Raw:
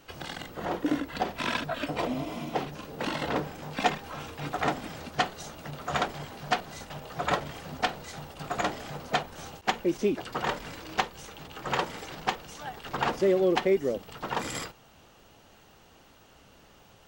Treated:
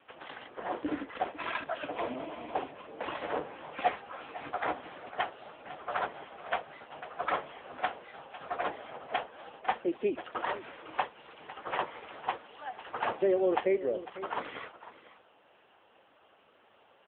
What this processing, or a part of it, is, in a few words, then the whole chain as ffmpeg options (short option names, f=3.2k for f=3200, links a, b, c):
satellite phone: -af "highpass=390,lowpass=3.1k,aecho=1:1:501:0.188" -ar 8000 -c:a libopencore_amrnb -b:a 6700